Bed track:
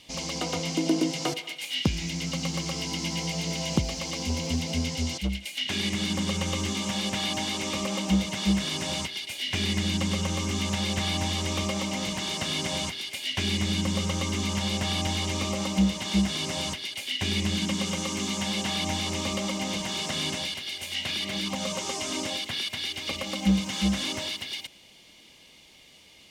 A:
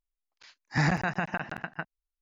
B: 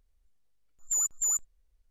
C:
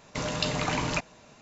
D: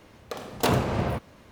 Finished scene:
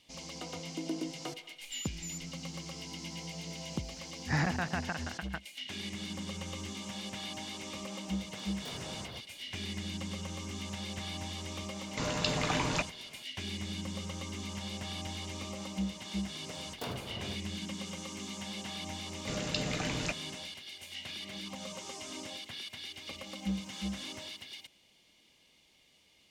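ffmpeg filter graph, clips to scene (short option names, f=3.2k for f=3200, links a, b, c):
-filter_complex "[4:a]asplit=2[a][b];[3:a]asplit=2[c][d];[0:a]volume=-12dB[e];[2:a]acompressor=threshold=-30dB:ratio=6:attack=3.2:release=140:knee=1:detection=peak[f];[a]asoftclip=type=tanh:threshold=-29dB[g];[d]equalizer=f=1k:w=2.2:g=-10.5[h];[f]atrim=end=1.9,asetpts=PTS-STARTPTS,volume=-11.5dB,afade=t=in:d=0.004:c=hsin,afade=t=out:st=1.896:d=0.004:c=hsin,adelay=810[i];[1:a]atrim=end=2.21,asetpts=PTS-STARTPTS,volume=-5dB,afade=t=in:d=0.004:c=hsin,afade=t=out:st=2.206:d=0.004:c=hsin,adelay=3550[j];[g]atrim=end=1.51,asetpts=PTS-STARTPTS,volume=-14.5dB,afade=t=in:d=0.004:c=hsin,afade=t=out:st=1.506:d=0.004:c=hsin,adelay=353682S[k];[c]atrim=end=1.41,asetpts=PTS-STARTPTS,volume=-3dB,afade=t=in:d=0.004:c=hsin,afade=t=out:st=1.406:d=0.004:c=hsin,adelay=11820[l];[b]atrim=end=1.51,asetpts=PTS-STARTPTS,volume=-17dB,afade=t=in:d=0.004:c=hsin,afade=t=out:st=1.506:d=0.004:c=hsin,adelay=16180[m];[h]atrim=end=1.41,asetpts=PTS-STARTPTS,volume=-5dB,afade=t=in:d=0.004:c=hsin,afade=t=out:st=1.406:d=0.004:c=hsin,adelay=19120[n];[e][i][j][k][l][m][n]amix=inputs=7:normalize=0"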